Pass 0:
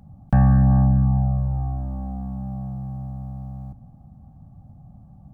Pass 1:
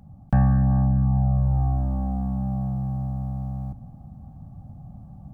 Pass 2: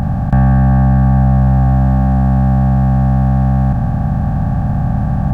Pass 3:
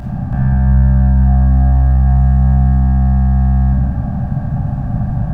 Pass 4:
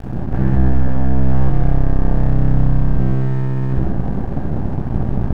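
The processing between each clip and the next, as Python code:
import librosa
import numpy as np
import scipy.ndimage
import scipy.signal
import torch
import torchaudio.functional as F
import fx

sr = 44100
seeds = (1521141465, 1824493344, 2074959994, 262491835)

y1 = fx.rider(x, sr, range_db=4, speed_s=0.5)
y2 = fx.bin_compress(y1, sr, power=0.2)
y2 = y2 * librosa.db_to_amplitude(6.5)
y3 = fx.room_shoebox(y2, sr, seeds[0], volume_m3=1300.0, walls='mixed', distance_m=2.9)
y3 = y3 * librosa.db_to_amplitude(-11.0)
y4 = fx.octave_divider(y3, sr, octaves=1, level_db=-5.0)
y4 = np.maximum(y4, 0.0)
y4 = y4 + 10.0 ** (-5.5 / 20.0) * np.pad(y4, (int(130 * sr / 1000.0), 0))[:len(y4)]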